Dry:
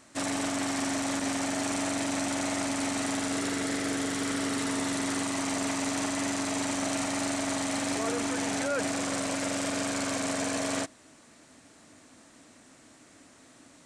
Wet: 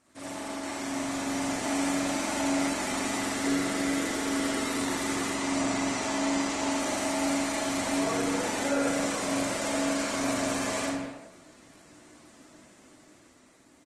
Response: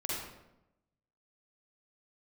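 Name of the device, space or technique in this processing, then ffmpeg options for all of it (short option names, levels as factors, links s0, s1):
speakerphone in a meeting room: -filter_complex "[0:a]asettb=1/sr,asplit=3[s0][s1][s2];[s0]atrim=end=5.304[s3];[s1]atrim=start=5.3:end=6.73,asetpts=PTS-STARTPTS,afade=t=in:d=0.004:c=qsin,afade=t=out:st=1.426:d=0.004:c=qsin,lowpass=f=8400:w=0.5412,lowpass=f=8400:w=1.3066[s4];[s2]atrim=start=6.726[s5];[s3][s4]acrossfade=d=0.004:c1=hsin:c2=qsin[s6];[s6][s5]acrossfade=d=0.004:c1=qsin:c2=hsin[s7];[1:a]atrim=start_sample=2205[s8];[s7][s8]afir=irnorm=-1:irlink=0,asplit=2[s9][s10];[s10]adelay=200,highpass=300,lowpass=3400,asoftclip=type=hard:threshold=0.0794,volume=0.282[s11];[s9][s11]amix=inputs=2:normalize=0,dynaudnorm=f=200:g=13:m=2,volume=0.376" -ar 48000 -c:a libopus -b:a 20k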